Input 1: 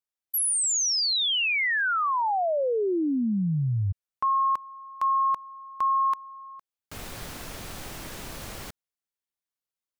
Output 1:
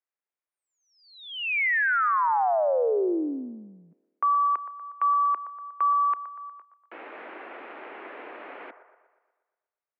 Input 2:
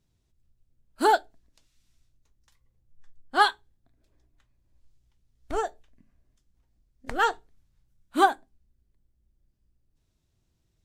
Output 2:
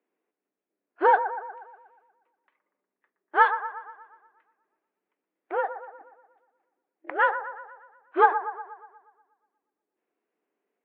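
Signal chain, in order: band-limited delay 0.12 s, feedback 54%, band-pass 820 Hz, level -10 dB; mistuned SSB +70 Hz 250–2400 Hz; gain +1.5 dB

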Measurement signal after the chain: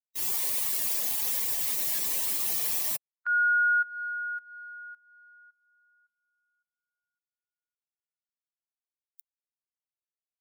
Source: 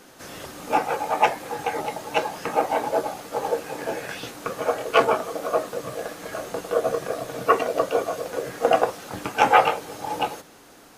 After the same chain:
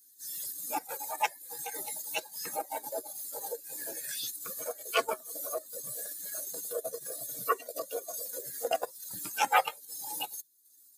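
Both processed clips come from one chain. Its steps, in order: per-bin expansion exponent 2; high shelf 8700 Hz +4 dB; in parallel at -2 dB: compressor, threshold -38 dBFS; on the sum: RIAA curve recording; transient shaper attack -5 dB, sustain -9 dB; gain -4.5 dB

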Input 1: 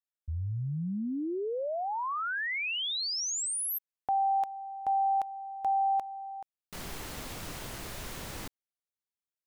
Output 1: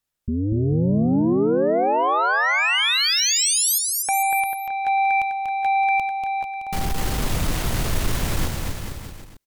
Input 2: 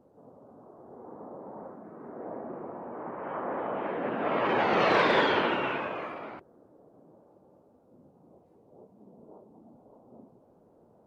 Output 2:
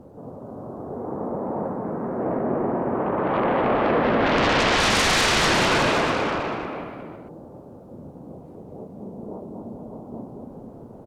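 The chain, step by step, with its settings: low shelf 170 Hz +11.5 dB; sine folder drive 17 dB, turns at -10 dBFS; on a send: bouncing-ball echo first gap 0.24 s, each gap 0.85×, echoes 5; on the sum: gain -8.5 dB

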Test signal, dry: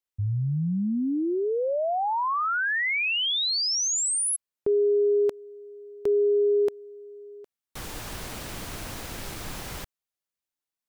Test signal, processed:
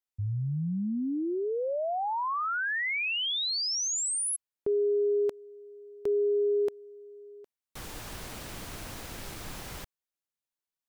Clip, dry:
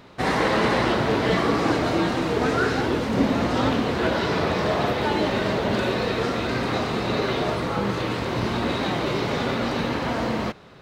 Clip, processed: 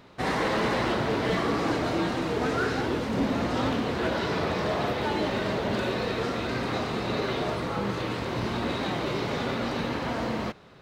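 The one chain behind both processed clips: overloaded stage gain 15.5 dB; gain -4.5 dB

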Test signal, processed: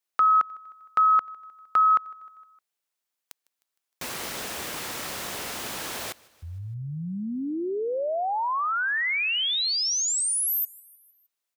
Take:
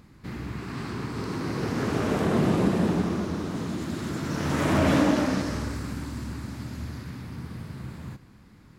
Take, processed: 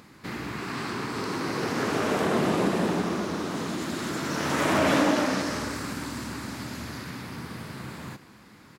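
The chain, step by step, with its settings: HPF 450 Hz 6 dB/oct; in parallel at 0 dB: compressor, threshold -39 dBFS; on the sum: feedback echo 0.154 s, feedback 57%, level -24 dB; gain +2 dB

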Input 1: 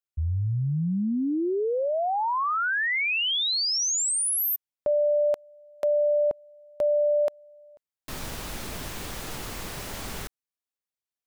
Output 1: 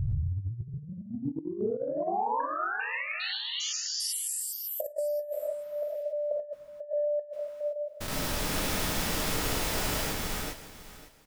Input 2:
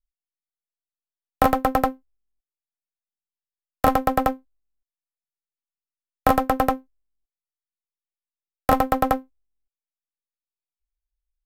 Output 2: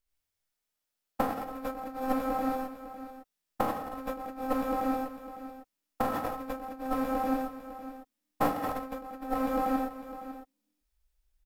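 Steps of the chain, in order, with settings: stepped spectrum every 0.4 s; feedback echo 0.553 s, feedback 22%, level -15 dB; non-linear reverb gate 0.14 s rising, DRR -3 dB; negative-ratio compressor -30 dBFS, ratio -0.5

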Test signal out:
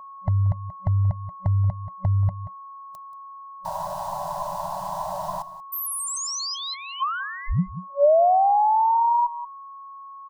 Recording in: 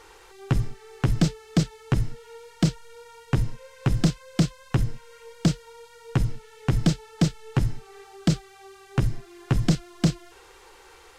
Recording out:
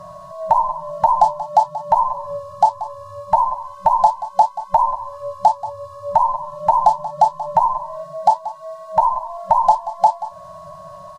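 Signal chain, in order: band inversion scrambler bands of 1000 Hz; whine 1100 Hz -46 dBFS; EQ curve 120 Hz 0 dB, 260 Hz +14 dB, 950 Hz +4 dB, 2200 Hz -21 dB, 4300 Hz -9 dB; on a send: echo 0.182 s -16 dB; on the sum: FFT band-reject 190–560 Hz; in parallel at +3 dB: compressor, threshold -32 dBFS; on the sum: dynamic EQ 400 Hz, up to +6 dB, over -49 dBFS, Q 1.3

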